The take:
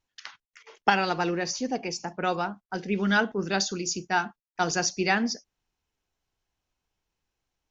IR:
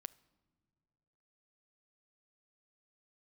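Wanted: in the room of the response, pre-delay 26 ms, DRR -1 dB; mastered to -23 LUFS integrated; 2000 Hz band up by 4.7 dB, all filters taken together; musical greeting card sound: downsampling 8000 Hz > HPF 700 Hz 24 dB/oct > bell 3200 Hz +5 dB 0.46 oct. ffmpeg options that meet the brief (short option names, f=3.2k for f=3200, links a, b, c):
-filter_complex "[0:a]equalizer=f=2k:t=o:g=6,asplit=2[a][b];[1:a]atrim=start_sample=2205,adelay=26[c];[b][c]afir=irnorm=-1:irlink=0,volume=6.5dB[d];[a][d]amix=inputs=2:normalize=0,aresample=8000,aresample=44100,highpass=f=700:w=0.5412,highpass=f=700:w=1.3066,equalizer=f=3.2k:t=o:w=0.46:g=5"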